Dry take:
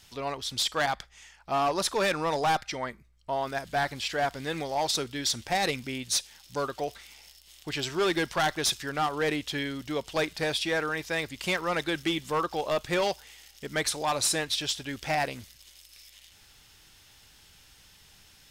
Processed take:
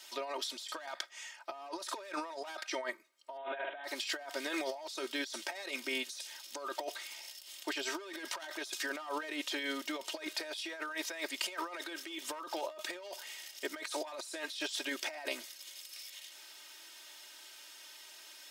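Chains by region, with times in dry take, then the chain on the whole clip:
3.37–3.84 HPF 200 Hz + flutter echo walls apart 9.1 m, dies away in 0.42 s + careless resampling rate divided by 6×, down none, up filtered
whole clip: HPF 380 Hz 24 dB/oct; comb 3.2 ms, depth 83%; negative-ratio compressor -36 dBFS, ratio -1; gain -5 dB

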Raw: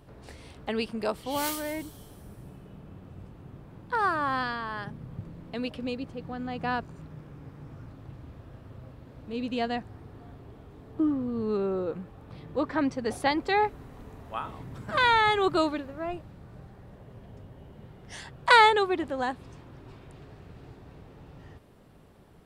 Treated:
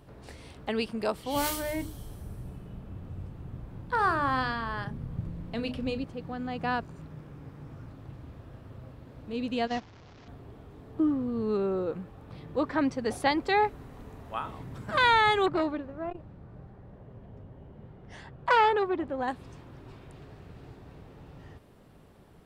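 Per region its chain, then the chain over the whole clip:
1.32–6.04 low shelf 120 Hz +12 dB + notches 50/100/150/200/250/300/350/400/450 Hz + doubler 35 ms -13 dB
9.67–10.28 delta modulation 32 kbps, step -35.5 dBFS + gate -33 dBFS, range -10 dB
15.46–19.28 LPF 1300 Hz 6 dB/oct + core saturation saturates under 1100 Hz
whole clip: dry

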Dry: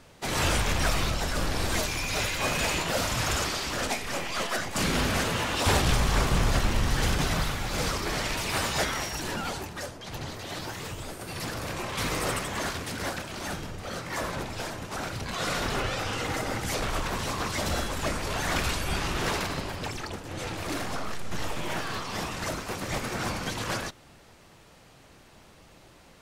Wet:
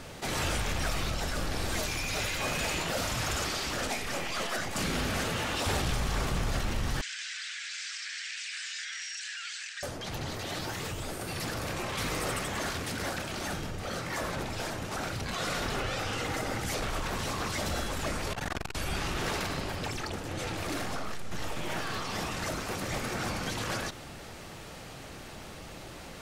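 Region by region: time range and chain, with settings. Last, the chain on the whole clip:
7.01–9.83 Chebyshev band-pass 1600–8100 Hz, order 4 + compressor 4:1, threshold -40 dBFS
18.33–18.75 high shelf 3400 Hz -5.5 dB + core saturation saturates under 350 Hz
whole clip: notch 1000 Hz, Q 18; fast leveller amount 50%; gain -7.5 dB

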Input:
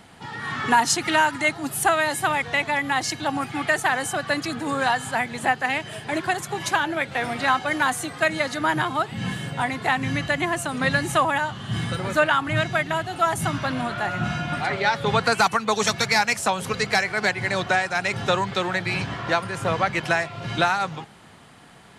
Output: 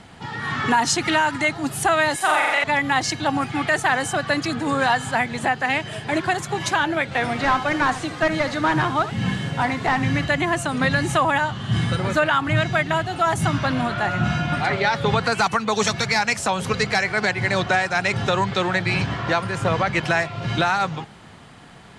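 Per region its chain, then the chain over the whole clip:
2.16–2.64 HPF 460 Hz + flutter echo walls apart 7.3 m, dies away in 1.1 s
7.33–10.25 delta modulation 64 kbps, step -36.5 dBFS + high shelf 10000 Hz -12 dB + echo 73 ms -13.5 dB
whole clip: LPF 8400 Hz 12 dB/oct; low shelf 140 Hz +5.5 dB; maximiser +11.5 dB; gain -8.5 dB

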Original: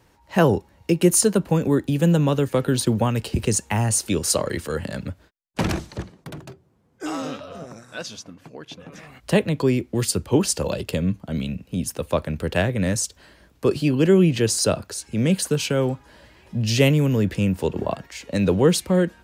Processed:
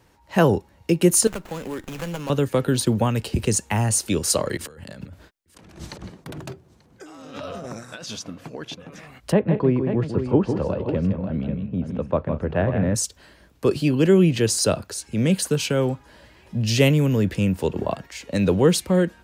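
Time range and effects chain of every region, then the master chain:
1.27–2.3 tilt +4 dB/oct + compressor 2:1, threshold -30 dBFS + running maximum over 9 samples
4.57–8.75 negative-ratio compressor -38 dBFS + echo 0.887 s -22.5 dB
9.32–12.95 LPF 1400 Hz + tapped delay 0.16/0.198/0.54 s -7.5/-18.5/-9.5 dB
whole clip: dry

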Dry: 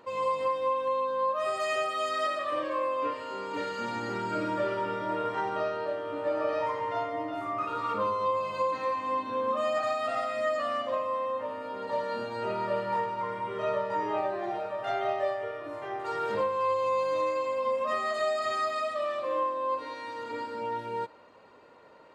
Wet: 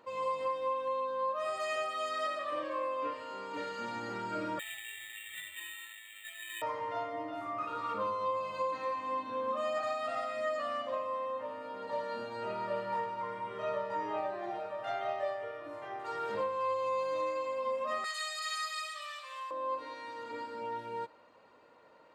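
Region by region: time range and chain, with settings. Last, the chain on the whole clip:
4.59–6.62 brick-wall FIR high-pass 1700 Hz + bell 2200 Hz +8 dB 2 oct + careless resampling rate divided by 8×, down none, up hold
18.04–19.51 HPF 1500 Hz + tilt +4 dB/oct
whole clip: low shelf 180 Hz -4 dB; notch 400 Hz, Q 12; gain -5 dB

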